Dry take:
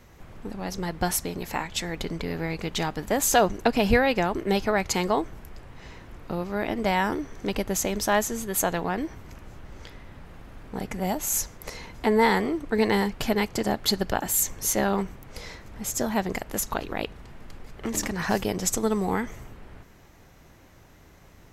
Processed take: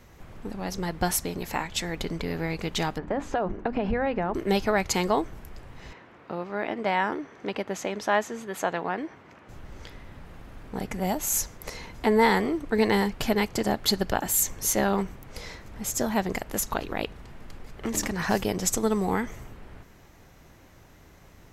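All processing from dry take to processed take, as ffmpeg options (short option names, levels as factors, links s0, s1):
-filter_complex "[0:a]asettb=1/sr,asplit=3[s0][s1][s2];[s0]atrim=end=2.984[s3];[s1]atrim=start=2.98:end=4.34,asetpts=PTS-STARTPTS,afade=t=in:d=0.004:c=qsin,afade=t=out:st=1.356:d=0.004:c=qsin,lowpass=1700,bandreject=f=50:t=h:w=6,bandreject=f=100:t=h:w=6,bandreject=f=150:t=h:w=6,bandreject=f=200:t=h:w=6,bandreject=f=250:t=h:w=6,bandreject=f=300:t=h:w=6,bandreject=f=350:t=h:w=6,acompressor=threshold=0.0891:ratio=10:attack=3.2:release=140:knee=1:detection=peak[s4];[s2]atrim=start=4.336[s5];[s3][s4]acrossfade=d=0.004:c1=hsin:c2=qsin[s6];[s6][s5]acrossfade=d=0.004:c1=qsin:c2=hsin,asettb=1/sr,asplit=3[s7][s8][s9];[s7]atrim=end=5.934[s10];[s8]atrim=start=5.93:end=9.49,asetpts=PTS-STARTPTS,afade=t=in:d=0.004:c=qsin,afade=t=out:st=3.556:d=0.004:c=qsin,highpass=100,lowpass=2300,aemphasis=mode=production:type=bsi[s11];[s9]atrim=start=9.486[s12];[s10][s11]acrossfade=d=0.004:c1=hsin:c2=qsin[s13];[s13][s12]acrossfade=d=0.004:c1=qsin:c2=hsin"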